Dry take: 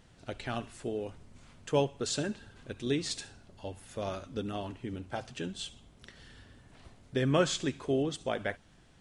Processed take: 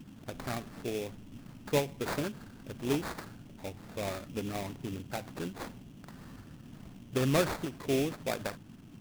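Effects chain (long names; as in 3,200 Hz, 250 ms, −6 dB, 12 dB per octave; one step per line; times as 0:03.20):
noise in a band 100–280 Hz −50 dBFS
sample-rate reduction 3,000 Hz, jitter 20%
every ending faded ahead of time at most 180 dB per second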